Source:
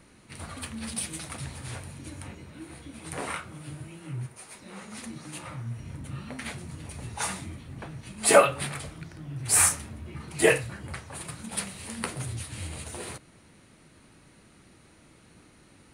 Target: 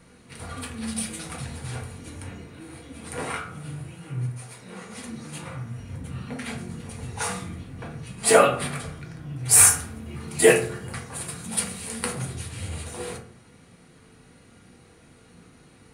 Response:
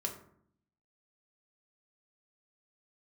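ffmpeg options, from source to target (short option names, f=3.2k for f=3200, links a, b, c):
-filter_complex "[0:a]asettb=1/sr,asplit=3[a][b][c];[a]atrim=end=9.514[d];[b]atrim=start=9.51:end=12.13,asetpts=PTS-STARTPTS,afade=t=in:d=0.004:c=qsin,afade=t=out:st=2.616:d=0.004:c=qsin,highshelf=f=5.7k:g=7.5[e];[c]atrim=start=12.126[f];[d][e]acrossfade=d=0.004:c1=hsin:c2=qsin[g];[g][f]acrossfade=d=0.004:c1=qsin:c2=hsin[h];[1:a]atrim=start_sample=2205,asetrate=52920,aresample=44100[i];[h][i]afir=irnorm=-1:irlink=0,volume=3dB"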